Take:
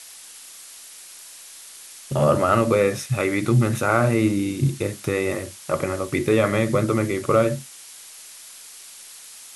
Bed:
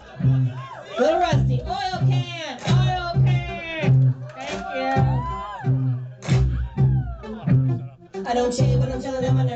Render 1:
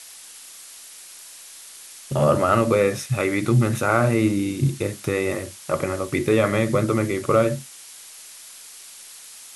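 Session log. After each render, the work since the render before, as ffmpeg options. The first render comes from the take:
ffmpeg -i in.wav -af anull out.wav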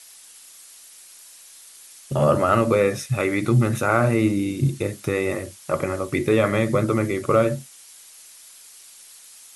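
ffmpeg -i in.wav -af "afftdn=noise_reduction=6:noise_floor=-43" out.wav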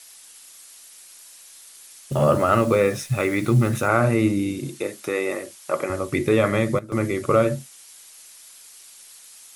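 ffmpeg -i in.wav -filter_complex "[0:a]asettb=1/sr,asplit=3[link_01][link_02][link_03];[link_01]atrim=end=2.124[link_04];[link_02]atrim=start=2.12:end=3.88,asetpts=PTS-STARTPTS,afade=type=in:duration=0.004:curve=qsin,afade=type=out:start_time=1.756:duration=0.004:curve=qsin,acrusher=bits=8:dc=4:mix=0:aa=0.000001[link_05];[link_03]atrim=start=3.876[link_06];[link_04][link_05]acrossfade=duration=0.004:curve1=hsin:curve2=qsin[link_07];[link_07][link_06]acrossfade=duration=0.004:curve1=qsin:curve2=hsin,asettb=1/sr,asplit=3[link_08][link_09][link_10];[link_08]atrim=end=4.594[link_11];[link_09]atrim=start=4.59:end=5.9,asetpts=PTS-STARTPTS,afade=type=in:duration=0.004:curve=qsin,afade=type=out:start_time=1.306:duration=0.004:curve=qsin,highpass=300[link_12];[link_10]atrim=start=5.896[link_13];[link_11][link_12]acrossfade=duration=0.004:curve1=hsin:curve2=qsin[link_14];[link_14][link_13]acrossfade=duration=0.004:curve1=qsin:curve2=hsin,asplit=3[link_15][link_16][link_17];[link_15]atrim=end=6.79,asetpts=PTS-STARTPTS,afade=type=out:start_time=6.52:duration=0.27:curve=log:silence=0.141254[link_18];[link_16]atrim=start=6.79:end=6.92,asetpts=PTS-STARTPTS,volume=-17dB[link_19];[link_17]atrim=start=6.92,asetpts=PTS-STARTPTS,afade=type=in:duration=0.27:curve=log:silence=0.141254[link_20];[link_18][link_19][link_20]concat=n=3:v=0:a=1" out.wav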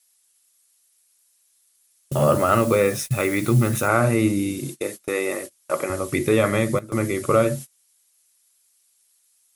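ffmpeg -i in.wav -af "agate=range=-23dB:threshold=-33dB:ratio=16:detection=peak,highshelf=frequency=8500:gain=11.5" out.wav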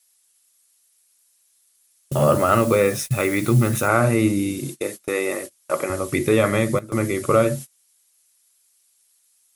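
ffmpeg -i in.wav -af "volume=1dB" out.wav

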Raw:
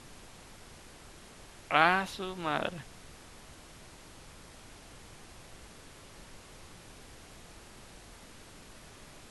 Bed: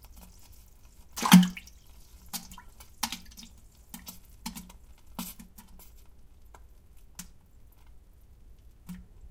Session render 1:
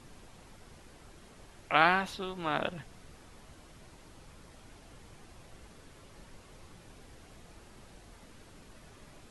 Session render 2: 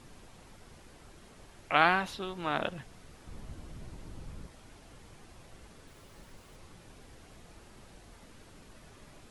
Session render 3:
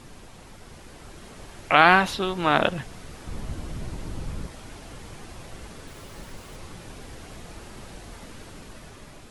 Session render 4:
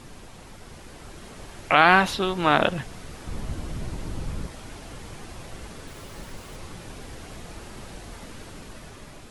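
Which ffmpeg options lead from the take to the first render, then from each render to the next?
ffmpeg -i in.wav -af "afftdn=noise_reduction=6:noise_floor=-53" out.wav
ffmpeg -i in.wav -filter_complex "[0:a]asettb=1/sr,asplit=3[link_01][link_02][link_03];[link_01]atrim=end=3.274[link_04];[link_02]atrim=start=3.27:end=4.47,asetpts=PTS-STARTPTS,afade=type=in:duration=0.004:curve=qsin,afade=type=out:start_time=1.196:duration=0.004:curve=qsin,lowshelf=frequency=330:gain=11.5[link_05];[link_03]atrim=start=4.466[link_06];[link_04][link_05]acrossfade=duration=0.004:curve1=hsin:curve2=qsin[link_07];[link_07][link_06]acrossfade=duration=0.004:curve1=qsin:curve2=hsin,asettb=1/sr,asplit=3[link_08][link_09][link_10];[link_08]atrim=end=5.874[link_11];[link_09]atrim=start=5.87:end=6.56,asetpts=PTS-STARTPTS,afade=type=in:duration=0.004:curve=qsin,afade=type=out:start_time=0.686:duration=0.004:curve=qsin,aeval=exprs='val(0)*gte(abs(val(0)),0.00112)':channel_layout=same[link_12];[link_10]atrim=start=6.556[link_13];[link_11][link_12]acrossfade=duration=0.004:curve1=hsin:curve2=qsin[link_14];[link_14][link_13]acrossfade=duration=0.004:curve1=qsin:curve2=hsin" out.wav
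ffmpeg -i in.wav -af "dynaudnorm=framelen=300:gausssize=7:maxgain=4.5dB,alimiter=level_in=7.5dB:limit=-1dB:release=50:level=0:latency=1" out.wav
ffmpeg -i in.wav -af "volume=1.5dB,alimiter=limit=-2dB:level=0:latency=1" out.wav

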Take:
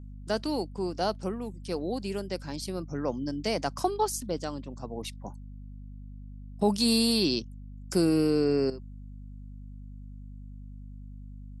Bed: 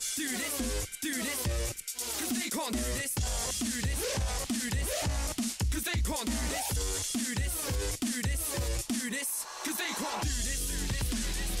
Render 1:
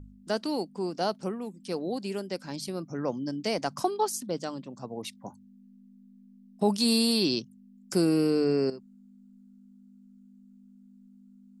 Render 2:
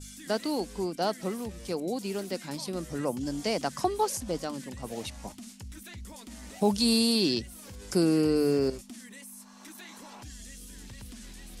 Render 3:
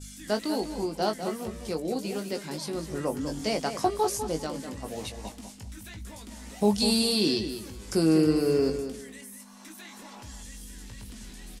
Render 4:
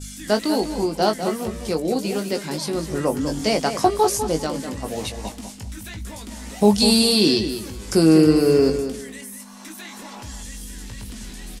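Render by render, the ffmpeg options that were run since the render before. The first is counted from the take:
ffmpeg -i in.wav -af "bandreject=frequency=50:width_type=h:width=4,bandreject=frequency=100:width_type=h:width=4,bandreject=frequency=150:width_type=h:width=4" out.wav
ffmpeg -i in.wav -i bed.wav -filter_complex "[1:a]volume=-13.5dB[link_01];[0:a][link_01]amix=inputs=2:normalize=0" out.wav
ffmpeg -i in.wav -filter_complex "[0:a]asplit=2[link_01][link_02];[link_02]adelay=19,volume=-6.5dB[link_03];[link_01][link_03]amix=inputs=2:normalize=0,asplit=2[link_04][link_05];[link_05]adelay=199,lowpass=frequency=3900:poles=1,volume=-8.5dB,asplit=2[link_06][link_07];[link_07]adelay=199,lowpass=frequency=3900:poles=1,volume=0.25,asplit=2[link_08][link_09];[link_09]adelay=199,lowpass=frequency=3900:poles=1,volume=0.25[link_10];[link_04][link_06][link_08][link_10]amix=inputs=4:normalize=0" out.wav
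ffmpeg -i in.wav -af "volume=8dB" out.wav

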